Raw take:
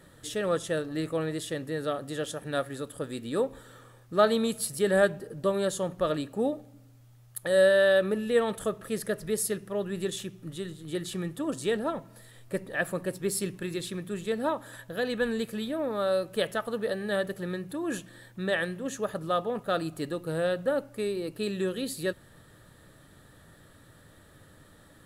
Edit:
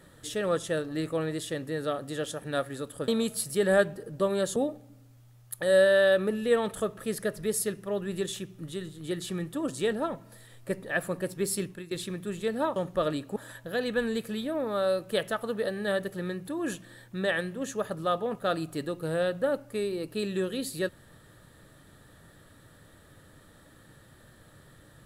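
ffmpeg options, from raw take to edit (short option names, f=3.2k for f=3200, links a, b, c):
-filter_complex "[0:a]asplit=6[a][b][c][d][e][f];[a]atrim=end=3.082[g];[b]atrim=start=4.318:end=5.802[h];[c]atrim=start=6.398:end=13.75,asetpts=PTS-STARTPTS,afade=t=out:st=7.072:d=0.28:silence=0.149624[i];[d]atrim=start=13.75:end=14.602,asetpts=PTS-STARTPTS,afade=t=in:d=0.004:c=hsin:silence=0.149624[j];[e]atrim=start=5.798:end=6.402[k];[f]atrim=start=14.598[l];[g][h]acrossfade=d=0.004:c1=hsin:c2=hsin[m];[i][j]concat=n=2:v=0:a=1[n];[m][n]acrossfade=d=0.004:c1=hsin:c2=hsin[o];[o][k]acrossfade=d=0.004:c1=hsin:c2=hsin[p];[p][l]acrossfade=d=0.004:c1=hsin:c2=hsin"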